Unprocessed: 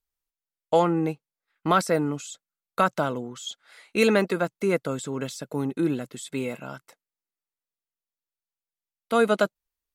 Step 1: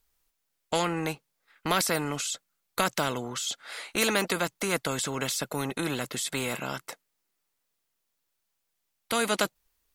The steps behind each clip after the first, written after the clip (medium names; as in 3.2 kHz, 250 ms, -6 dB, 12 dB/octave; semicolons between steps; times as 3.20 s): spectrum-flattening compressor 2:1; trim -2.5 dB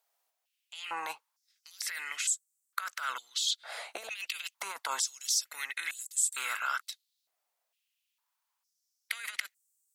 compressor with a negative ratio -30 dBFS, ratio -0.5; step-sequenced high-pass 2.2 Hz 680–7800 Hz; trim -6 dB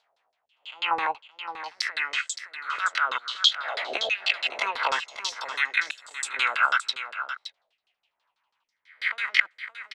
reverse spectral sustain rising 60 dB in 0.35 s; LFO low-pass saw down 6.1 Hz 430–4500 Hz; delay 568 ms -10.5 dB; trim +7.5 dB